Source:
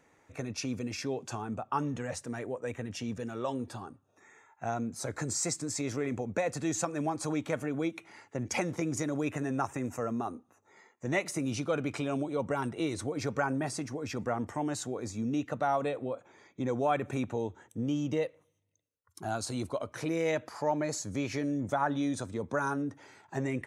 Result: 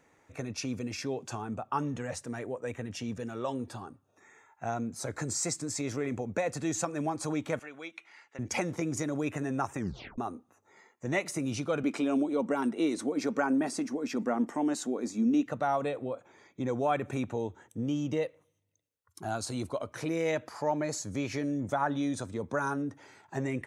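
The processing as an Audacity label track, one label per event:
7.590000	8.390000	resonant band-pass 2,600 Hz, Q 0.71
9.770000	9.770000	tape stop 0.41 s
11.830000	15.460000	low shelf with overshoot 160 Hz −13 dB, Q 3

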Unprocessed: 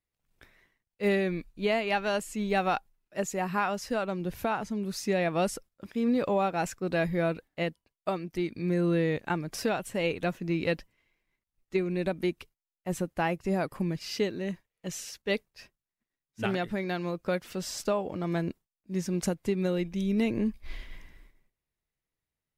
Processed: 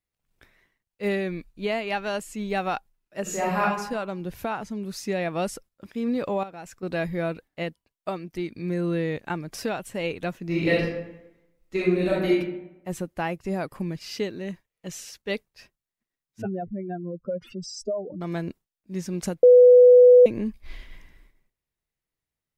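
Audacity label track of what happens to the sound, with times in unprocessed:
3.220000	3.620000	thrown reverb, RT60 0.86 s, DRR −5.5 dB
6.430000	6.830000	downward compressor 2 to 1, threshold −45 dBFS
10.450000	12.350000	thrown reverb, RT60 0.9 s, DRR −6.5 dB
16.420000	18.210000	expanding power law on the bin magnitudes exponent 3.1
19.430000	20.260000	beep over 495 Hz −8.5 dBFS

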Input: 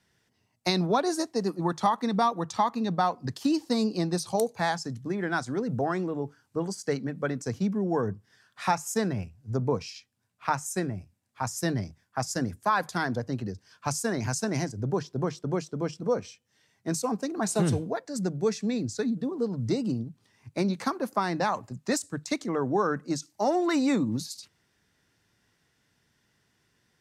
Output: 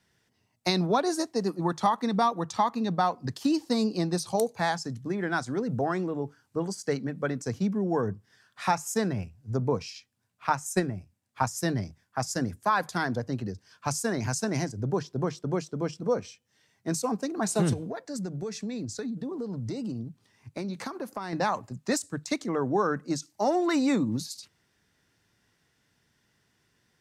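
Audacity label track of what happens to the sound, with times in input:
10.470000	11.550000	transient designer attack +6 dB, sustain −2 dB
17.730000	21.330000	downward compressor, threshold −30 dBFS

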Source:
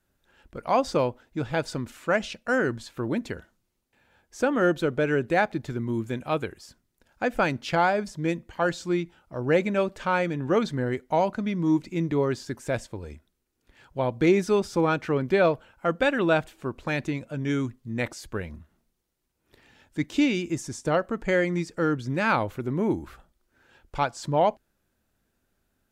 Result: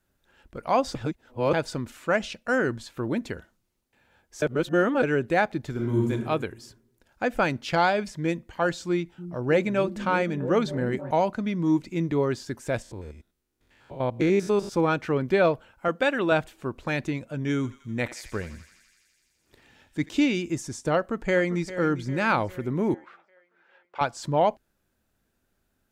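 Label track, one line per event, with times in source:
0.950000	1.530000	reverse
4.420000	5.030000	reverse
5.710000	6.110000	thrown reverb, RT60 1.1 s, DRR −2 dB
7.730000	8.220000	parametric band 5,500 Hz → 1,700 Hz +9 dB
8.870000	11.110000	echo through a band-pass that steps 309 ms, band-pass from 170 Hz, each repeat 0.7 octaves, level −6 dB
12.820000	14.720000	spectrum averaged block by block every 100 ms
15.880000	16.320000	high-pass filter 220 Hz 6 dB per octave
17.550000	20.090000	feedback echo with a high-pass in the loop 84 ms, feedback 85%, high-pass 1,100 Hz, level −13.5 dB
20.960000	21.680000	delay throw 400 ms, feedback 55%, level −13.5 dB
22.940000	24.010000	band-pass filter 600–2,500 Hz

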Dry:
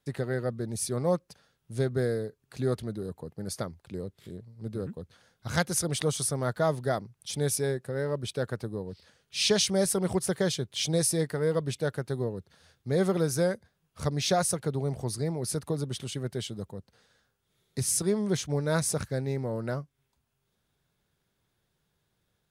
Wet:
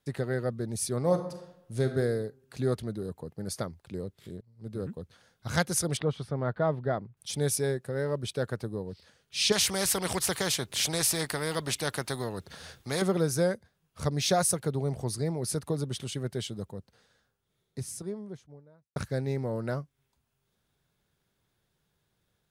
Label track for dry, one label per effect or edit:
1.000000	1.950000	thrown reverb, RT60 0.88 s, DRR 6 dB
4.410000	4.850000	fade in linear, from −18 dB
5.970000	7.170000	high-frequency loss of the air 390 metres
9.520000	13.020000	every bin compressed towards the loudest bin 2 to 1
14.130000	14.710000	high-shelf EQ 12,000 Hz +8 dB
16.770000	18.960000	fade out and dull

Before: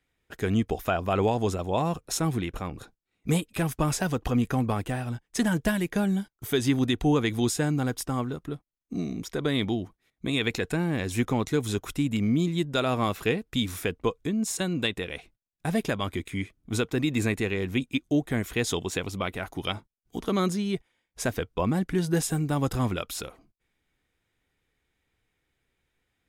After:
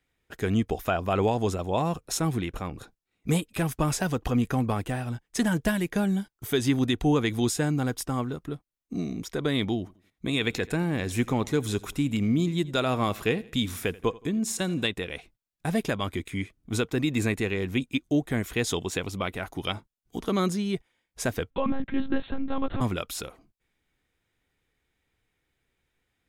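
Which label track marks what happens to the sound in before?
9.780000	14.850000	repeating echo 85 ms, feedback 41%, level −21 dB
21.500000	22.810000	one-pitch LPC vocoder at 8 kHz 270 Hz

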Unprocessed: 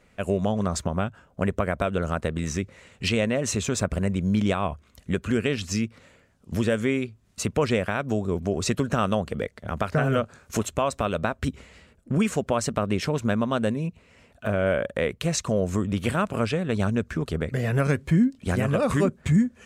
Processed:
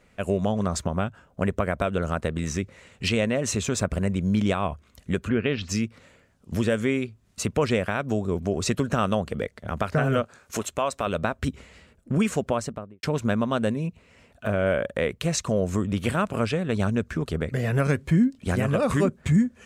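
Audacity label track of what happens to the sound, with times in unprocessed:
5.280000	5.680000	low-pass filter 2,600 Hz → 5,200 Hz 24 dB per octave
10.220000	11.070000	low-shelf EQ 240 Hz −9.5 dB
12.420000	13.030000	fade out and dull

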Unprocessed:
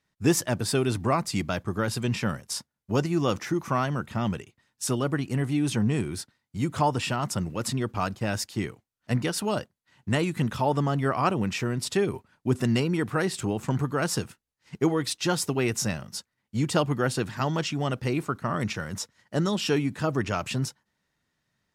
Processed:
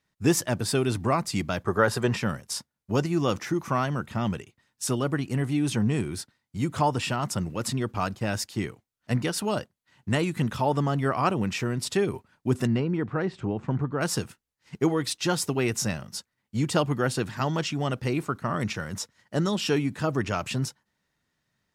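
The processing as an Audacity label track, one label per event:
1.660000	2.170000	gain on a spectral selection 360–2,000 Hz +8 dB
12.670000	14.010000	head-to-tape spacing loss at 10 kHz 31 dB

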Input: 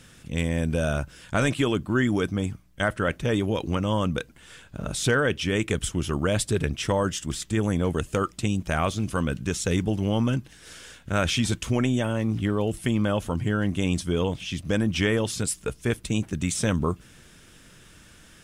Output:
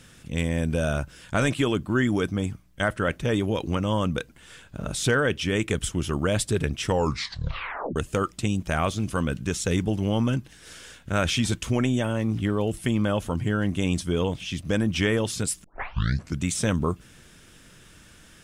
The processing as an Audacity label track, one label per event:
6.860000	6.860000	tape stop 1.10 s
15.640000	15.640000	tape start 0.79 s

